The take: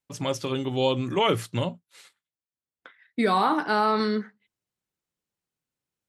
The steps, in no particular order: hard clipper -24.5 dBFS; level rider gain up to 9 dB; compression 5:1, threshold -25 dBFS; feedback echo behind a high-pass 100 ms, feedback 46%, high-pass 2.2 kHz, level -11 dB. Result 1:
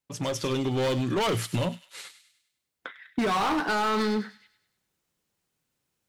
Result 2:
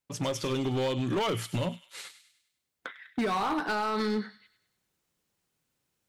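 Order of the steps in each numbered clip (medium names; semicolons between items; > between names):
hard clipper > level rider > compression > feedback echo behind a high-pass; level rider > compression > feedback echo behind a high-pass > hard clipper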